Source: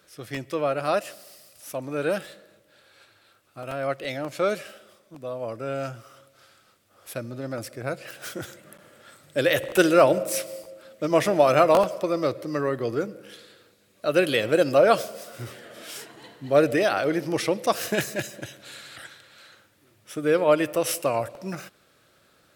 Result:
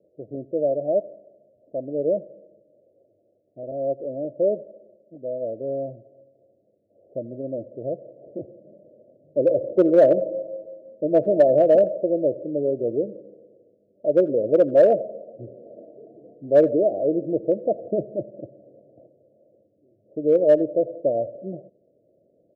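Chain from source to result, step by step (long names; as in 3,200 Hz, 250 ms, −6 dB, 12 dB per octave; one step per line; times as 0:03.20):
Butterworth low-pass 660 Hz 96 dB per octave
in parallel at −7 dB: gain into a clipping stage and back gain 14.5 dB
on the sum: high-pass filter 410 Hz 6 dB per octave
single-tap delay 83 ms −23.5 dB
level +3 dB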